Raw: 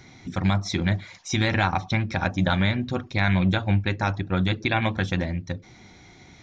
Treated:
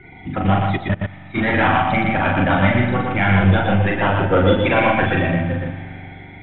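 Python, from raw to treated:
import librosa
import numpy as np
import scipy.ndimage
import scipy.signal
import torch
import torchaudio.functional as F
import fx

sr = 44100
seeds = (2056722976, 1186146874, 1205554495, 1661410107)

y = fx.spec_quant(x, sr, step_db=30)
y = fx.dynamic_eq(y, sr, hz=940.0, q=0.74, threshold_db=-37.0, ratio=4.0, max_db=5)
y = 10.0 ** (-20.5 / 20.0) * np.tanh(y / 10.0 ** (-20.5 / 20.0))
y = scipy.signal.sosfilt(scipy.signal.butter(16, 3400.0, 'lowpass', fs=sr, output='sos'), y)
y = fx.doubler(y, sr, ms=41.0, db=-2.5)
y = fx.rev_spring(y, sr, rt60_s=2.7, pass_ms=(42,), chirp_ms=40, drr_db=8.0)
y = fx.level_steps(y, sr, step_db=22, at=(0.76, 1.34), fade=0.02)
y = fx.peak_eq(y, sr, hz=520.0, db=9.5, octaves=0.52, at=(4.09, 4.81))
y = y + 10.0 ** (-3.5 / 20.0) * np.pad(y, (int(119 * sr / 1000.0), 0))[:len(y)]
y = y * librosa.db_to_amplitude(6.0)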